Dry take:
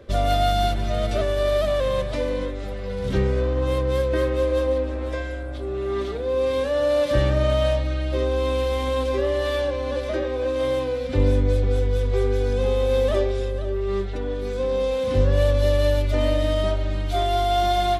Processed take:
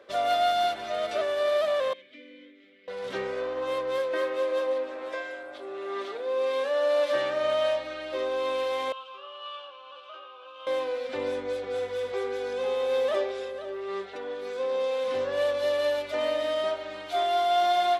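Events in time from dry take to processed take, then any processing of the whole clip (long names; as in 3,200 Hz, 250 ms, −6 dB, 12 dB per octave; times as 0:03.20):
0:01.93–0:02.88: formant filter i
0:03.98–0:07.43: high-pass filter 160 Hz 6 dB per octave
0:08.92–0:10.67: pair of resonant band-passes 1,900 Hz, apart 1.2 octaves
0:11.69–0:12.12: flutter between parallel walls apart 8.6 metres, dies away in 0.5 s
whole clip: high-pass filter 600 Hz 12 dB per octave; high-shelf EQ 5,100 Hz −9.5 dB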